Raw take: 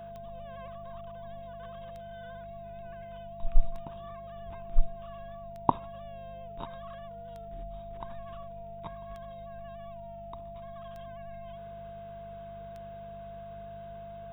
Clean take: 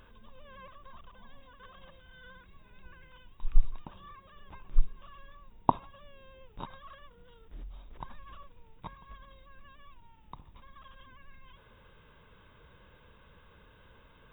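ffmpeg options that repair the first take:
ffmpeg -i in.wav -filter_complex "[0:a]adeclick=threshold=4,bandreject=frequency=50.2:width_type=h:width=4,bandreject=frequency=100.4:width_type=h:width=4,bandreject=frequency=150.6:width_type=h:width=4,bandreject=frequency=200.8:width_type=h:width=4,bandreject=frequency=680:width=30,asplit=3[link_01][link_02][link_03];[link_01]afade=type=out:start_time=4.45:duration=0.02[link_04];[link_02]highpass=frequency=140:width=0.5412,highpass=frequency=140:width=1.3066,afade=type=in:start_time=4.45:duration=0.02,afade=type=out:start_time=4.57:duration=0.02[link_05];[link_03]afade=type=in:start_time=4.57:duration=0.02[link_06];[link_04][link_05][link_06]amix=inputs=3:normalize=0" out.wav

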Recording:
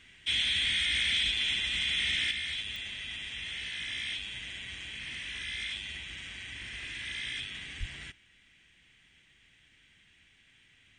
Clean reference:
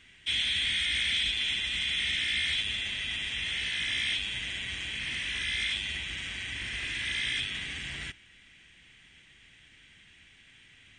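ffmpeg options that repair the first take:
ffmpeg -i in.wav -filter_complex "[0:a]adeclick=threshold=4,asplit=3[link_01][link_02][link_03];[link_01]afade=type=out:start_time=7.79:duration=0.02[link_04];[link_02]highpass=frequency=140:width=0.5412,highpass=frequency=140:width=1.3066,afade=type=in:start_time=7.79:duration=0.02,afade=type=out:start_time=7.91:duration=0.02[link_05];[link_03]afade=type=in:start_time=7.91:duration=0.02[link_06];[link_04][link_05][link_06]amix=inputs=3:normalize=0,asetnsamples=nb_out_samples=441:pad=0,asendcmd='2.31 volume volume 6dB',volume=0dB" out.wav

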